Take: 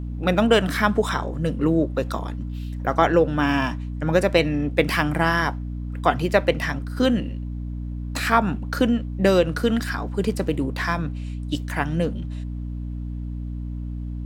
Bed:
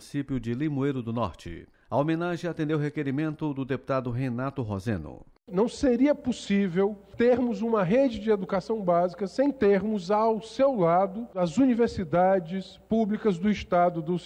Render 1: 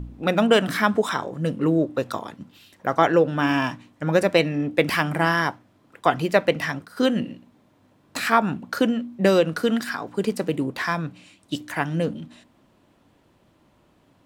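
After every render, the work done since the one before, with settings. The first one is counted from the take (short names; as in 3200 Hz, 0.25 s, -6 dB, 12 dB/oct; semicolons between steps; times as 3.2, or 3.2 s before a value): de-hum 60 Hz, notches 5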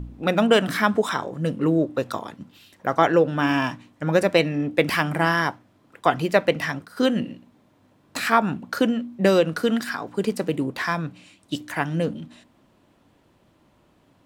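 nothing audible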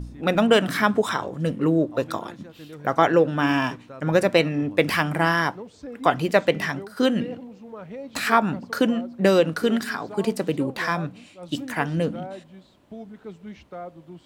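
add bed -14.5 dB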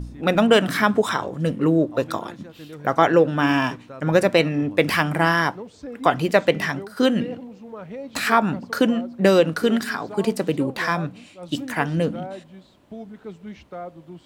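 gain +2 dB; limiter -3 dBFS, peak gain reduction 1.5 dB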